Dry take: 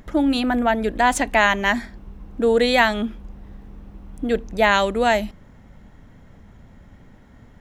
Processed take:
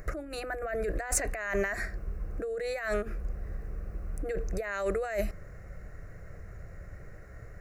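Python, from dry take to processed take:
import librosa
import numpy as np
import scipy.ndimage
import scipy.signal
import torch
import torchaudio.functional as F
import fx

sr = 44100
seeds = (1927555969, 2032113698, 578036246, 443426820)

y = fx.over_compress(x, sr, threshold_db=-26.0, ratio=-1.0)
y = fx.fixed_phaser(y, sr, hz=900.0, stages=6)
y = y * 10.0 ** (-2.0 / 20.0)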